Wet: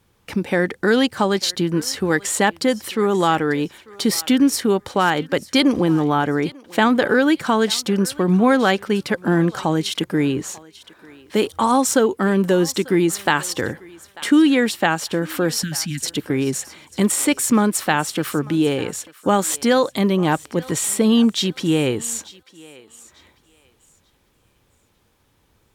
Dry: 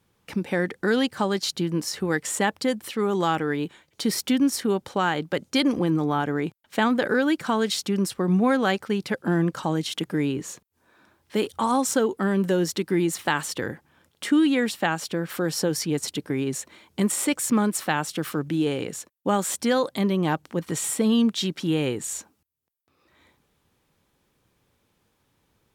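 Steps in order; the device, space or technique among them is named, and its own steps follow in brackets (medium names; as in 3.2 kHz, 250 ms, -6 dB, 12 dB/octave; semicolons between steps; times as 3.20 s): low shelf boost with a cut just above (bass shelf 100 Hz +6.5 dB; peaking EQ 160 Hz -3.5 dB 1.1 oct); 15.63–16.06 s: elliptic band-stop 240–1600 Hz; thinning echo 893 ms, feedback 25%, high-pass 610 Hz, level -19 dB; trim +6 dB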